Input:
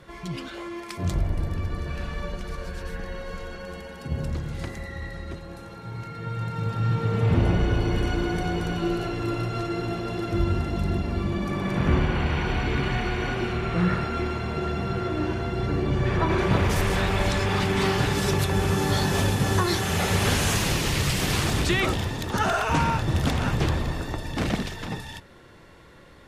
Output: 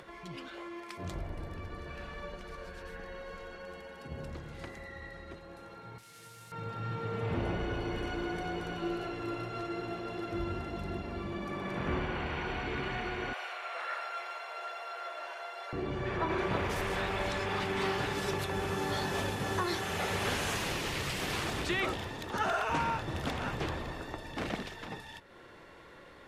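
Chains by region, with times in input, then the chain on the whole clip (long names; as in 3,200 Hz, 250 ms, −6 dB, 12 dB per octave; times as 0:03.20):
0:05.98–0:06.52: linear delta modulator 64 kbit/s, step −34 dBFS + first-order pre-emphasis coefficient 0.8
0:13.33–0:15.73: Chebyshev high-pass filter 570 Hz, order 4 + high-shelf EQ 6,900 Hz +9.5 dB
whole clip: upward compression, threshold −36 dBFS; bass and treble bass −9 dB, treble −6 dB; level −6.5 dB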